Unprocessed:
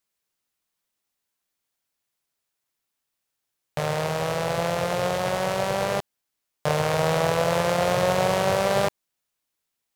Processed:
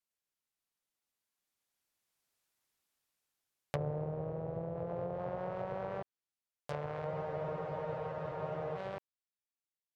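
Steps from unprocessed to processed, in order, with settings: Doppler pass-by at 2.51 s, 9 m/s, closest 6.9 m; low-pass that closes with the level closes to 470 Hz, closed at -30 dBFS; spectral freeze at 7.09 s, 1.67 s; trim -1 dB

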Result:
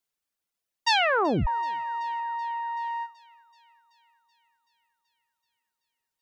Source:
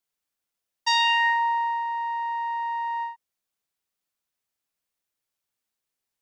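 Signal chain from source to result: reverb removal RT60 0.66 s; 0.88 s: tape stop 0.59 s; 2.20–2.77 s: distance through air 130 m; thinning echo 380 ms, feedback 71%, high-pass 800 Hz, level -21.5 dB

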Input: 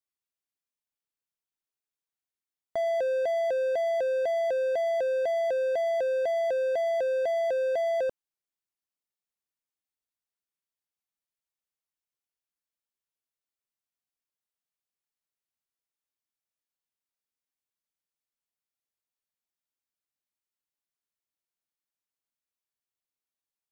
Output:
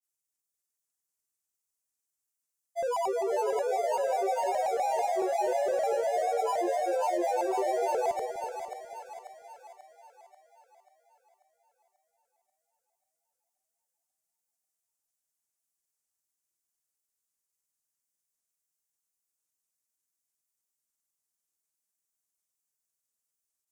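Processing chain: granulator, grains 20 per s, pitch spread up and down by 7 st; resonant high shelf 5.1 kHz +11.5 dB, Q 1.5; two-band feedback delay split 700 Hz, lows 245 ms, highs 538 ms, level -6 dB; trim -1.5 dB

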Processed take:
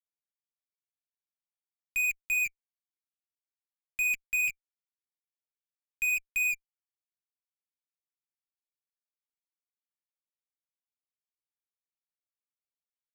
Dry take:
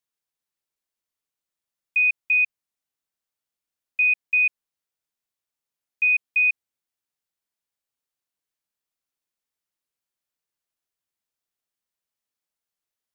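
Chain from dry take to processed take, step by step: flange 0.99 Hz, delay 3.8 ms, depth 4.3 ms, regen +51%; band-pass filter 2.3 kHz, Q 15; in parallel at -9 dB: fuzz box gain 56 dB, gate -57 dBFS; on the sum: trim -7 dB

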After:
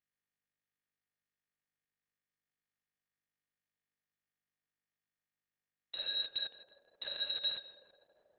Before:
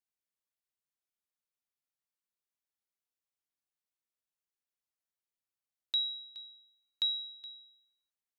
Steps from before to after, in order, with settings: 7.09–7.58 s: treble shelf 3.5 kHz +6 dB; bit crusher 8-bit; sine folder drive 16 dB, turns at -22.5 dBFS; tape echo 162 ms, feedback 87%, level -7 dB, low-pass 1.2 kHz; trim -3.5 dB; Opus 6 kbps 48 kHz

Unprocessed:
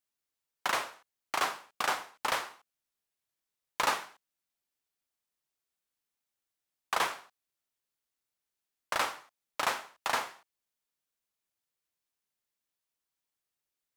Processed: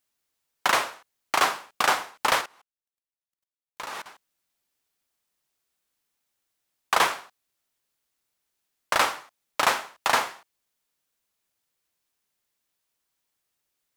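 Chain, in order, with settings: 2.41–4.06 s: level held to a coarse grid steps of 22 dB; trim +8.5 dB

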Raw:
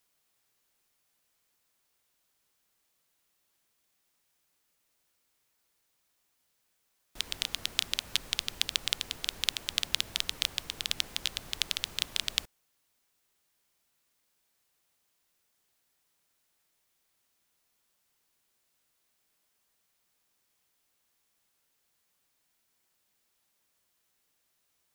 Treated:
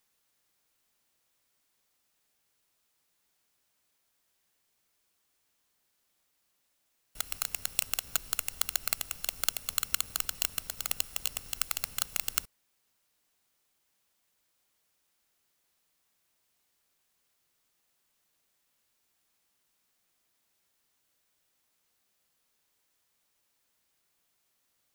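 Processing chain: bit-reversed sample order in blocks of 128 samples

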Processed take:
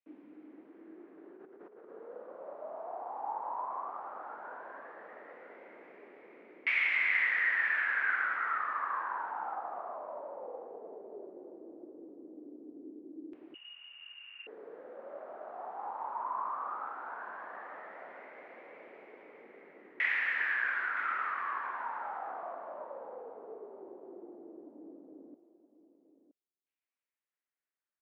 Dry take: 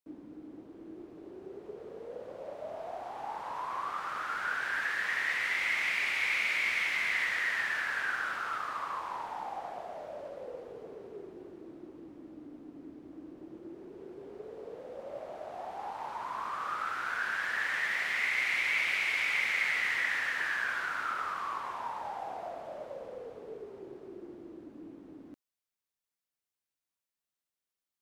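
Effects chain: high-pass 220 Hz 24 dB/octave; 1.32–1.89 s: compressor with a negative ratio -50 dBFS, ratio -1; LFO low-pass saw down 0.15 Hz 360–2500 Hz; delay 969 ms -13.5 dB; 13.54–14.47 s: frequency inversion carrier 3.2 kHz; trim -5 dB

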